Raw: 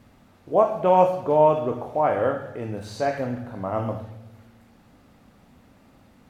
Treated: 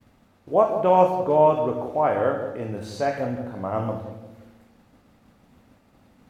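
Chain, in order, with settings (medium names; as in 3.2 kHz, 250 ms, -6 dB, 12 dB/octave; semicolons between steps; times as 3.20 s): band-passed feedback delay 175 ms, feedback 42%, band-pass 350 Hz, level -7.5 dB; expander -50 dBFS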